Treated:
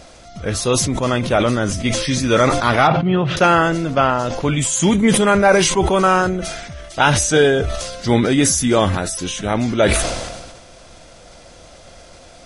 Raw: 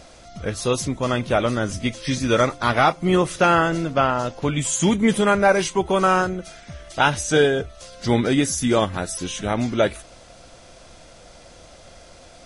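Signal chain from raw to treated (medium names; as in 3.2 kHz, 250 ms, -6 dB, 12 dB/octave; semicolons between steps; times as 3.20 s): 2.87–3.37 s: cabinet simulation 110–3100 Hz, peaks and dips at 130 Hz +10 dB, 320 Hz -8 dB, 510 Hz -6 dB, 1.1 kHz -7 dB, 2.1 kHz -9 dB; decay stretcher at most 39 dB/s; trim +3 dB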